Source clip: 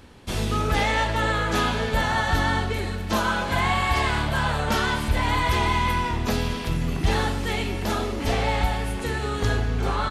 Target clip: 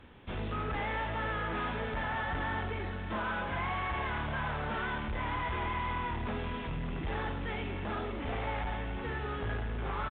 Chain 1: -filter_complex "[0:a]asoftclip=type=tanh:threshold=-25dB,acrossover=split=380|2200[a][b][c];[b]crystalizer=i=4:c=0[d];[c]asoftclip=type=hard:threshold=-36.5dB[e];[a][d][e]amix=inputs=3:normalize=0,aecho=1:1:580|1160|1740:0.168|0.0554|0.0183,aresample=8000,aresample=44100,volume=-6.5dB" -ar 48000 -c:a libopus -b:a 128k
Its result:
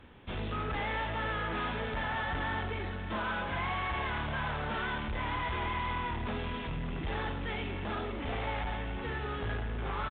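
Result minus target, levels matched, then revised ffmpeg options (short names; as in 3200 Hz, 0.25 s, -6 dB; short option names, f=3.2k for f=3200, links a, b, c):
hard clip: distortion -7 dB
-filter_complex "[0:a]asoftclip=type=tanh:threshold=-25dB,acrossover=split=380|2200[a][b][c];[b]crystalizer=i=4:c=0[d];[c]asoftclip=type=hard:threshold=-45dB[e];[a][d][e]amix=inputs=3:normalize=0,aecho=1:1:580|1160|1740:0.168|0.0554|0.0183,aresample=8000,aresample=44100,volume=-6.5dB" -ar 48000 -c:a libopus -b:a 128k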